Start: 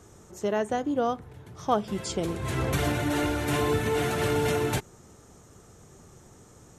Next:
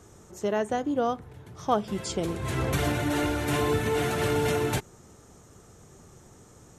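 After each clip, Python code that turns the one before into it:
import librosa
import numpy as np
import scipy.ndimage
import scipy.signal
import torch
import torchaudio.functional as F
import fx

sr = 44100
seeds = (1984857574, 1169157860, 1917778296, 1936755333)

y = x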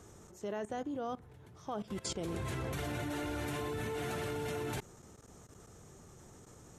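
y = fx.level_steps(x, sr, step_db=18)
y = F.gain(torch.from_numpy(y), -1.5).numpy()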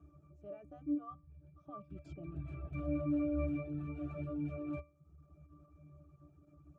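y = fx.octave_resonator(x, sr, note='D', decay_s=0.38)
y = fx.dereverb_blind(y, sr, rt60_s=0.73)
y = F.gain(torch.from_numpy(y), 10.5).numpy()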